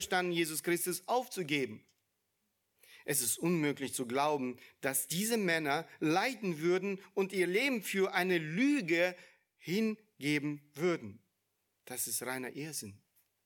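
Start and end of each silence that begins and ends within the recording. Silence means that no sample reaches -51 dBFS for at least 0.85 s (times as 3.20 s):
1.79–2.83 s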